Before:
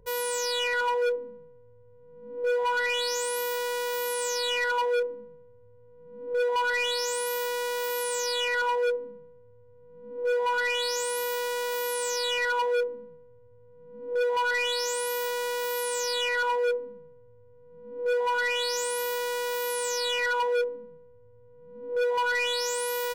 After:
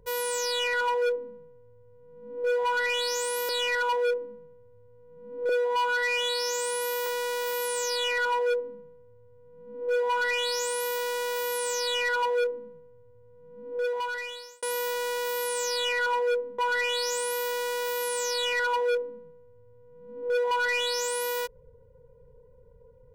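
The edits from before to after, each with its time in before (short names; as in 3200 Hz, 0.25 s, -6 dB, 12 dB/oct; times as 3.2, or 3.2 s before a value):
3.49–4.38 cut
6.38–7.43 stretch 1.5×
13.94–14.99 fade out
16.95–18.25 cut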